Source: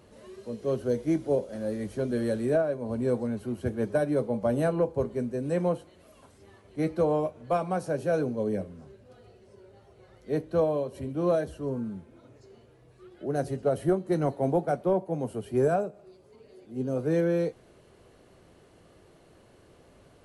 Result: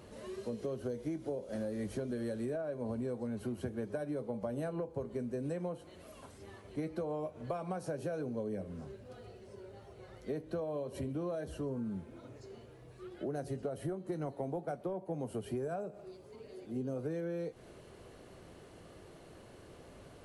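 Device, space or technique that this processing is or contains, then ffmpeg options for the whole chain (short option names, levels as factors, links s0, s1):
serial compression, peaks first: -af "acompressor=threshold=0.0251:ratio=6,acompressor=threshold=0.0112:ratio=2.5,volume=1.33"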